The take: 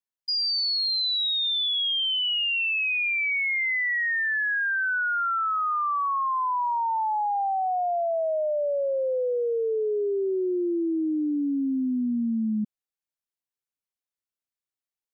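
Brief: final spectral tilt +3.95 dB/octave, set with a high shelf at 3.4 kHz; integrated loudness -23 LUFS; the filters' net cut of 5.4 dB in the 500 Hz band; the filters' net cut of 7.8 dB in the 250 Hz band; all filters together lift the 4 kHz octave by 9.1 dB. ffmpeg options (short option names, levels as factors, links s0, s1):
-af "equalizer=f=250:t=o:g=-8,equalizer=f=500:t=o:g=-5,highshelf=f=3400:g=5.5,equalizer=f=4000:t=o:g=7.5,volume=0.531"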